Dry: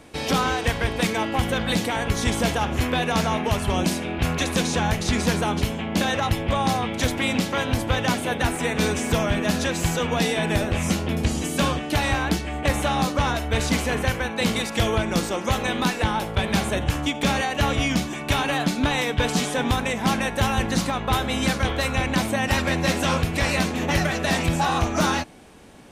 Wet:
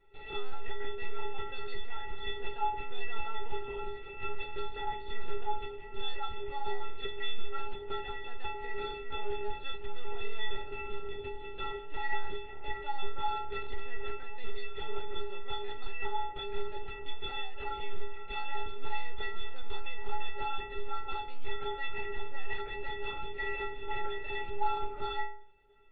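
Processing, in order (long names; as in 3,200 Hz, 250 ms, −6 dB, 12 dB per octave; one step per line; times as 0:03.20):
linear-prediction vocoder at 8 kHz pitch kept
stiff-string resonator 400 Hz, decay 0.59 s, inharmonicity 0.03
level +5 dB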